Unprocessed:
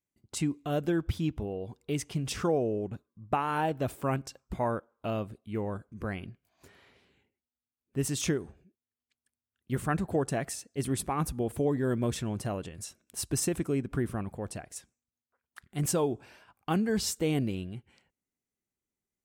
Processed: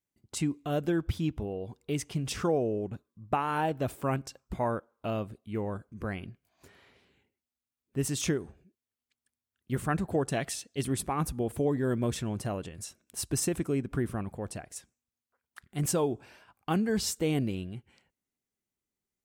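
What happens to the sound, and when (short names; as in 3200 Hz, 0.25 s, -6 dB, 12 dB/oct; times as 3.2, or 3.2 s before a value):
10.32–10.83 bell 3400 Hz +11 dB 0.84 oct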